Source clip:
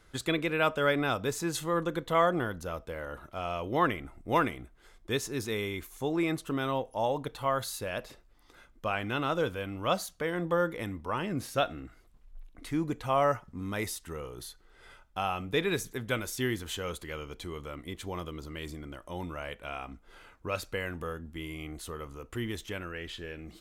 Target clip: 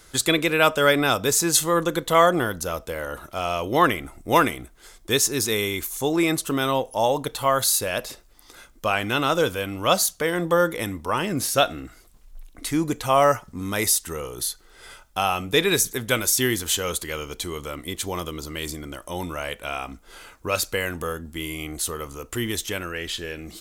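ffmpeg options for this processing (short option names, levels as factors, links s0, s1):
-af "bass=f=250:g=-3,treble=f=4000:g=11,volume=2.66"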